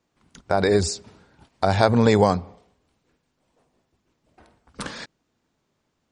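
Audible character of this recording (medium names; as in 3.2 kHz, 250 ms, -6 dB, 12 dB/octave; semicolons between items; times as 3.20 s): noise floor -74 dBFS; spectral tilt -5.5 dB/octave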